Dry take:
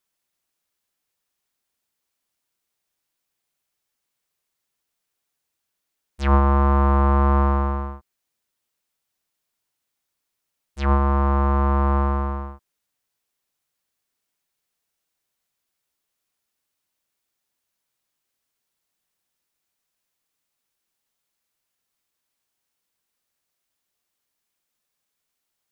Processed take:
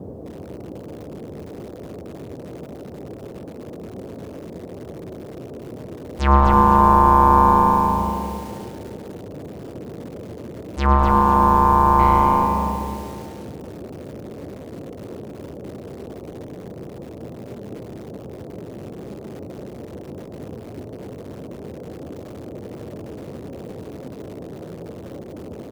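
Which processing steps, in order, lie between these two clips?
bell 960 Hz +7.5 dB 0.48 oct; frequency-shifting echo 0.109 s, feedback 61%, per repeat -83 Hz, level -11 dB; in parallel at -1.5 dB: compressor, threshold -29 dBFS, peak gain reduction 17.5 dB; 11.99–12.46 on the sum: sample leveller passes 1; band noise 70–530 Hz -36 dBFS; reverb RT60 2.1 s, pre-delay 0.115 s, DRR 8.5 dB; lo-fi delay 0.251 s, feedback 35%, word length 6-bit, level -6.5 dB

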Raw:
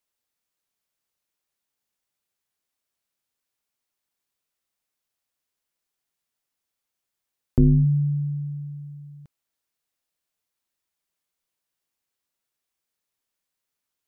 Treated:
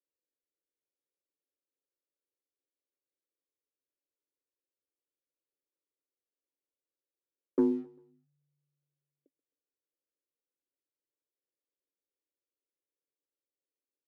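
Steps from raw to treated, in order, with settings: Chebyshev band-pass 270–570 Hz, order 4; sample leveller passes 1; feedback echo 0.132 s, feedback 46%, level -22.5 dB

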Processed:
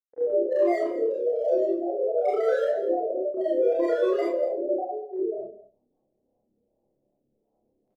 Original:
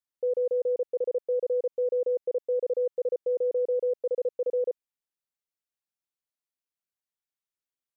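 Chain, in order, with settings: reverse delay 0.544 s, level -2.5 dB; steep low-pass 520 Hz 48 dB/oct; notches 60/120/180/240 Hz; gate -41 dBFS, range -20 dB; low shelf 360 Hz -10 dB; reverse; upward compressor, threshold -42 dBFS; reverse; hard clip -27 dBFS, distortion -16 dB; grains 0.1 s, pitch spread up and down by 7 st; doubler 29 ms -3 dB; on a send: echo 0.202 s -15.5 dB; on the sum: Schroeder reverb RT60 0.32 s, combs from 29 ms, DRR -5 dB

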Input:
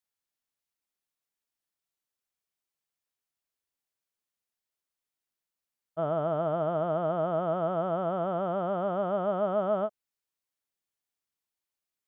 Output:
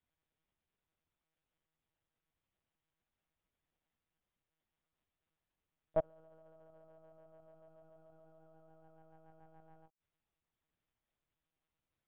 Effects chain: flipped gate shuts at -24 dBFS, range -41 dB; high shelf 2000 Hz +3 dB; sample leveller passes 1; tilt -3 dB/oct; formant-preserving pitch shift +11 st; monotone LPC vocoder at 8 kHz 160 Hz; gain +6.5 dB

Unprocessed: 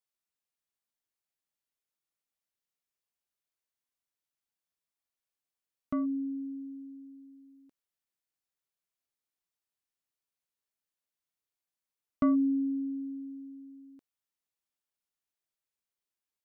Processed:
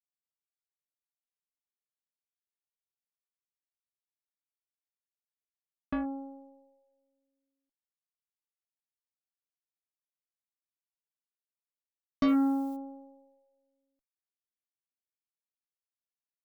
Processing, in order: added harmonics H 3 -37 dB, 4 -25 dB, 7 -17 dB, 8 -33 dB, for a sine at -19 dBFS; 12.27–12.75 added noise blue -62 dBFS

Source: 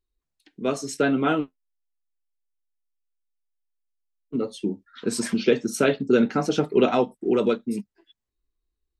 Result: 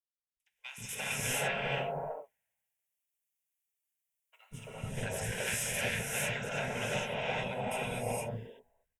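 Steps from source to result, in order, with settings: spectral limiter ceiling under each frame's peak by 25 dB; AGC gain up to 4 dB; limiter -8.5 dBFS, peak gain reduction 6.5 dB; compressor 6:1, threshold -33 dBFS, peak gain reduction 16.5 dB; fixed phaser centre 1200 Hz, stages 6; added harmonics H 2 -16 dB, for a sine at -22 dBFS; three bands offset in time highs, lows, mids 0.19/0.34 s, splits 330/990 Hz; non-linear reverb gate 0.49 s rising, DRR -6 dB; three-band expander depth 70%

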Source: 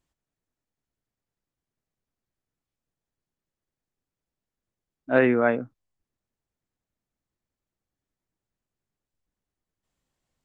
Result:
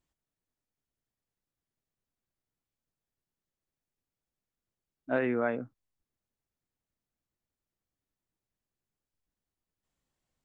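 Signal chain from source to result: compressor 4:1, threshold -21 dBFS, peak gain reduction 7.5 dB; gain -4 dB

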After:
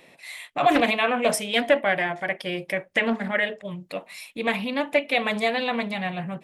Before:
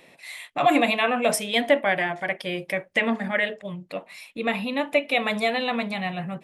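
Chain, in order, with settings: 3.71–4.57 high shelf 4000 Hz +6.5 dB; Doppler distortion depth 0.29 ms

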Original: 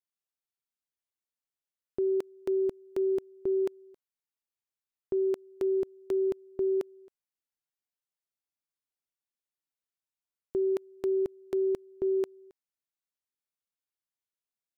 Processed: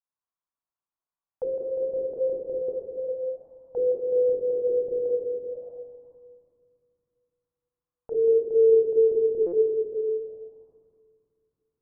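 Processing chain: speed glide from 142% -> 108%; reverb RT60 2.3 s, pre-delay 22 ms, DRR -5 dB; stuck buffer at 2.62/9.46, samples 256, times 10; envelope low-pass 410–1100 Hz down, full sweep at -26.5 dBFS; gain -8.5 dB

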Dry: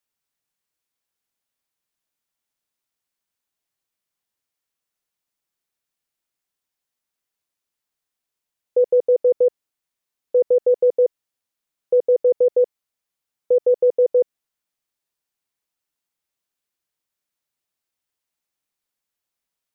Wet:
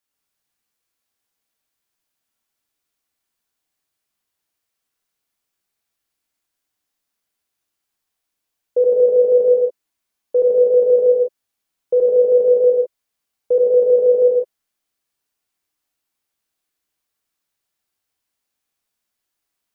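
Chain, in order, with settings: non-linear reverb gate 0.23 s flat, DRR -3.5 dB

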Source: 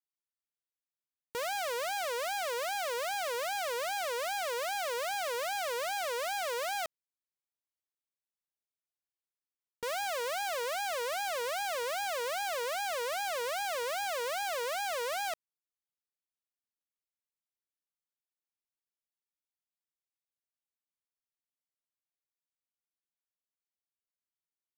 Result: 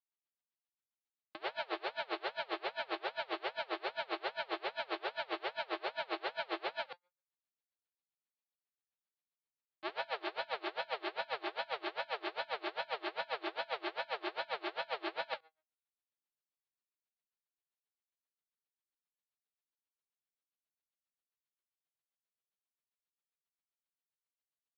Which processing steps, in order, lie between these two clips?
spectral whitening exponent 0.6; Chebyshev band-pass 270–4300 Hz, order 5; ring modulator 140 Hz; flange 0.14 Hz, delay 5.5 ms, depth 2.4 ms, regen +90%; on a send: early reflections 51 ms -6.5 dB, 67 ms -4 dB; on the sum: dB-linear tremolo 7.5 Hz, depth 28 dB; gain +7.5 dB

